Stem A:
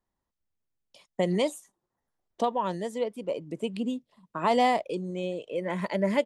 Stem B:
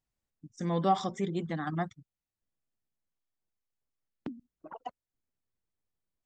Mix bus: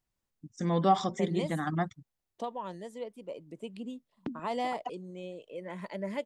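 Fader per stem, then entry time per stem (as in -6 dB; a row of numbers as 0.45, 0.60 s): -10.0, +2.0 dB; 0.00, 0.00 s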